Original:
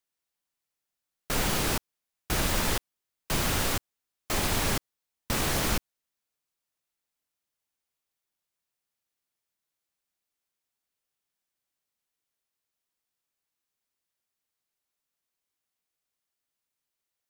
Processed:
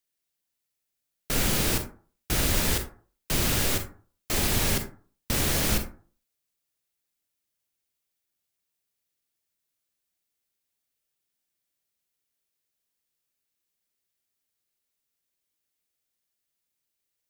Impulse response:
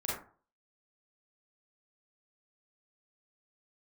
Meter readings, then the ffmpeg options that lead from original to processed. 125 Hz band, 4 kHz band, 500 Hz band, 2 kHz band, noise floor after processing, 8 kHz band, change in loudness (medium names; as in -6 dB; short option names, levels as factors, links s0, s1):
+3.0 dB, +2.0 dB, +1.0 dB, +0.5 dB, -82 dBFS, +3.5 dB, +3.0 dB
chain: -filter_complex "[0:a]equalizer=f=1000:t=o:w=1.4:g=-6.5,asplit=2[s0][s1];[1:a]atrim=start_sample=2205,highshelf=f=7900:g=8.5[s2];[s1][s2]afir=irnorm=-1:irlink=0,volume=0.376[s3];[s0][s3]amix=inputs=2:normalize=0"